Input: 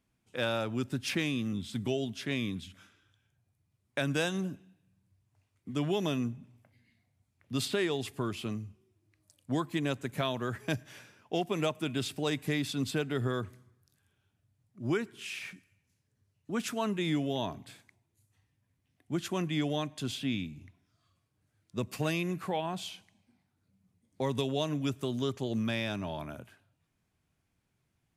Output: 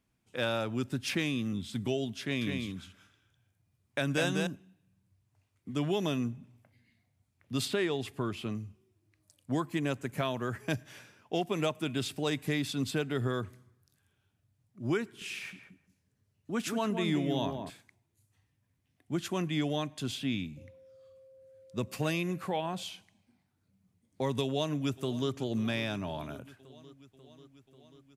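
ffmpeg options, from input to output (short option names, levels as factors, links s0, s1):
-filter_complex "[0:a]asettb=1/sr,asplit=3[s0][s1][s2];[s0]atrim=end=2.214[s3];[s1]atrim=start=2.21:end=4.47,asetpts=PTS-STARTPTS,afade=t=in:d=0.004:c=qsin,afade=t=out:st=2.256:d=0.004:c=qsin,aecho=1:1:202:0.631,atrim=end_sample=99666[s4];[s2]atrim=start=4.466[s5];[s3][s4]acrossfade=d=0.004:c1=hsin:c2=qsin[s6];[s6][s5]acrossfade=d=0.004:c1=qsin:c2=hsin,asettb=1/sr,asplit=3[s7][s8][s9];[s7]atrim=end=7.734[s10];[s8]atrim=start=7.73:end=8.55,asetpts=PTS-STARTPTS,afade=t=in:d=0.004:c=qsin,afade=t=out:st=0.816:d=0.004:c=qsin,bass=f=250:g=0,treble=f=4000:g=-5[s11];[s9]atrim=start=8.546[s12];[s10][s11]acrossfade=d=0.004:c1=hsin:c2=qsin[s13];[s13][s12]acrossfade=d=0.004:c1=qsin:c2=hsin,asettb=1/sr,asplit=3[s14][s15][s16];[s14]atrim=end=9.514[s17];[s15]atrim=start=9.51:end=10.71,asetpts=PTS-STARTPTS,afade=t=in:d=0.004:c=qsin,afade=t=out:st=1.196:d=0.004:c=qsin,equalizer=f=3700:w=5.1:g=-6.5[s18];[s16]atrim=start=10.706[s19];[s17][s18]acrossfade=d=0.004:c1=hsin:c2=qsin[s20];[s20][s19]acrossfade=d=0.004:c1=qsin:c2=hsin,asettb=1/sr,asplit=3[s21][s22][s23];[s21]atrim=end=15.044[s24];[s22]atrim=start=15.04:end=17.7,asetpts=PTS-STARTPTS,afade=t=in:d=0.004:c=qsin,afade=t=out:st=2.656:d=0.004:c=qsin,asplit=2[s25][s26];[s26]adelay=175,lowpass=f=940:p=1,volume=0.596,asplit=2[s27][s28];[s28]adelay=175,lowpass=f=940:p=1,volume=0.2,asplit=2[s29][s30];[s30]adelay=175,lowpass=f=940:p=1,volume=0.2[s31];[s25][s27][s29][s31]amix=inputs=4:normalize=0,atrim=end_sample=117306[s32];[s23]atrim=start=17.696[s33];[s24][s32]acrossfade=d=0.004:c1=hsin:c2=qsin[s34];[s34][s33]acrossfade=d=0.004:c1=qsin:c2=hsin,asettb=1/sr,asplit=3[s35][s36][s37];[s35]atrim=end=20.574[s38];[s36]atrim=start=20.57:end=22.83,asetpts=PTS-STARTPTS,afade=t=in:d=0.004:c=qsin,afade=t=out:st=2.256:d=0.004:c=qsin,aeval=exprs='val(0)+0.002*sin(2*PI*530*n/s)':c=same[s39];[s37]atrim=start=22.826[s40];[s38][s39]acrossfade=d=0.004:c1=hsin:c2=qsin[s41];[s41][s40]acrossfade=d=0.004:c1=qsin:c2=hsin,asplit=2[s42][s43];[s43]afade=t=in:st=24.43:d=0.01,afade=t=out:st=25.31:d=0.01,aecho=0:1:540|1080|1620|2160|2700|3240|3780|4320|4860|5400:0.133352|0.100014|0.0750106|0.0562579|0.0421935|0.0316451|0.0237338|0.0178004|0.0133503|0.0100127[s44];[s42][s44]amix=inputs=2:normalize=0"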